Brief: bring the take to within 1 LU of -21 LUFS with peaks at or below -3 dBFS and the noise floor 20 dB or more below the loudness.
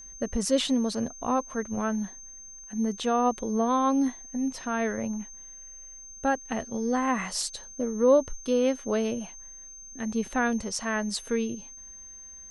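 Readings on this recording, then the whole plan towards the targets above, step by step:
steady tone 6.3 kHz; tone level -43 dBFS; loudness -28.0 LUFS; peak level -10.5 dBFS; loudness target -21.0 LUFS
-> band-stop 6.3 kHz, Q 30; trim +7 dB

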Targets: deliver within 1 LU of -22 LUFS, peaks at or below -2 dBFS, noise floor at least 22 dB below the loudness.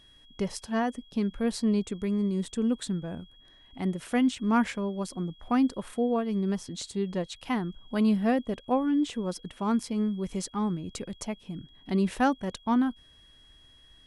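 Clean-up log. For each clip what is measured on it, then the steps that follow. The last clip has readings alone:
steady tone 3.3 kHz; tone level -56 dBFS; loudness -29.5 LUFS; peak level -13.0 dBFS; loudness target -22.0 LUFS
-> band-stop 3.3 kHz, Q 30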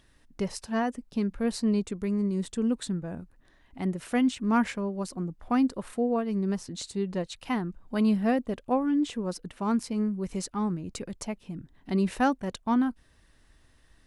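steady tone not found; loudness -29.5 LUFS; peak level -13.0 dBFS; loudness target -22.0 LUFS
-> trim +7.5 dB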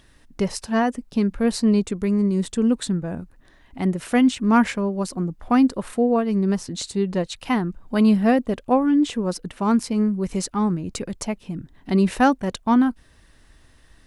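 loudness -22.0 LUFS; peak level -5.5 dBFS; noise floor -54 dBFS

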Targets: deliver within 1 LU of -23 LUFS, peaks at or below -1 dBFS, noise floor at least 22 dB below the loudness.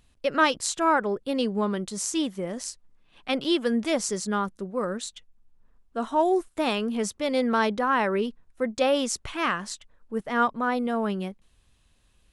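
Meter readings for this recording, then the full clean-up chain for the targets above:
loudness -26.5 LUFS; peak level -8.0 dBFS; loudness target -23.0 LUFS
-> trim +3.5 dB

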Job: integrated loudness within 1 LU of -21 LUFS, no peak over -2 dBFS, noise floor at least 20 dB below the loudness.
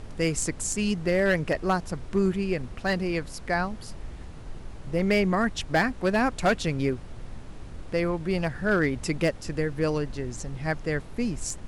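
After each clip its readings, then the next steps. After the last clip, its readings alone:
clipped samples 0.4%; clipping level -16.0 dBFS; noise floor -41 dBFS; noise floor target -47 dBFS; loudness -27.0 LUFS; peak level -16.0 dBFS; loudness target -21.0 LUFS
-> clip repair -16 dBFS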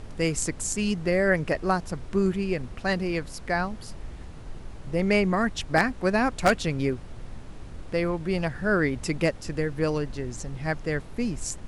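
clipped samples 0.0%; noise floor -41 dBFS; noise floor target -47 dBFS
-> noise print and reduce 6 dB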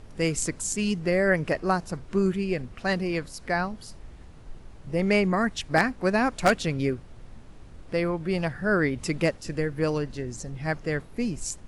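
noise floor -47 dBFS; loudness -27.0 LUFS; peak level -7.0 dBFS; loudness target -21.0 LUFS
-> trim +6 dB; peak limiter -2 dBFS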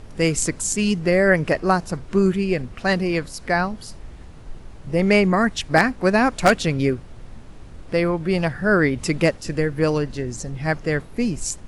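loudness -21.0 LUFS; peak level -2.0 dBFS; noise floor -41 dBFS

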